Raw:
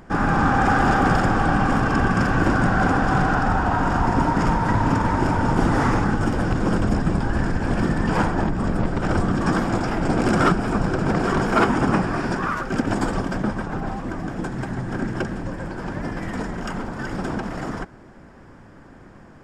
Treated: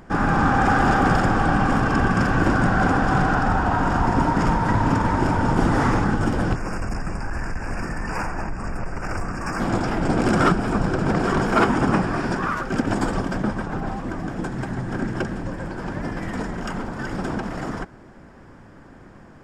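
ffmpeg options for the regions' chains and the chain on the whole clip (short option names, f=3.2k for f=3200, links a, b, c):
-filter_complex "[0:a]asettb=1/sr,asplit=3[a][b][c];[a]atrim=end=6.554[d];[b]atrim=start=6.55:end=9.6,asetpts=PTS-STARTPTS,afade=t=in:d=0.004:c=qsin,afade=t=out:st=3.046:d=0.004:c=qsin,equalizer=f=230:w=0.36:g=-10.5,volume=20.5dB,asoftclip=hard,volume=-20.5dB,asuperstop=centerf=3600:order=12:qfactor=1.9[e];[c]atrim=start=9.596[f];[d][e]acrossfade=d=0.004:c1=hsin:c2=qsin[g];[g][f]acrossfade=d=0.004:c1=qsin:c2=hsin"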